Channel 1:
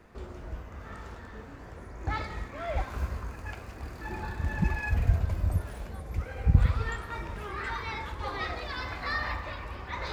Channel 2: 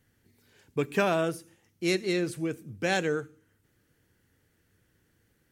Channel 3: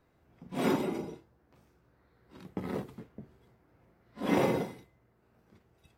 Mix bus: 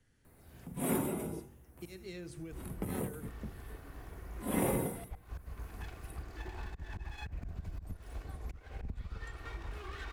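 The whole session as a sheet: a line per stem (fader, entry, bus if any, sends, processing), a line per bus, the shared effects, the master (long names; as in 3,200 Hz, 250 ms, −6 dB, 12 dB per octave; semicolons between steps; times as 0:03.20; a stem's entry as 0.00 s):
−3.5 dB, 2.35 s, bus A, no send, lower of the sound and its delayed copy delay 2.7 ms; expander for the loud parts 1.5 to 1, over −41 dBFS
−15.5 dB, 0.00 s, bus A, no send, elliptic low-pass filter 11,000 Hz; mains-hum notches 50/100/150/200/250/300/350 Hz
−6.0 dB, 0.25 s, no bus, no send, high shelf with overshoot 7,300 Hz +13.5 dB, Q 3; hum removal 47.29 Hz, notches 35
bus A: 0.0 dB, volume swells 422 ms; downward compressor 16 to 1, threshold −50 dBFS, peak gain reduction 20.5 dB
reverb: not used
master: automatic gain control gain up to 7 dB; low-shelf EQ 82 Hz +11 dB; multiband upward and downward compressor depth 40%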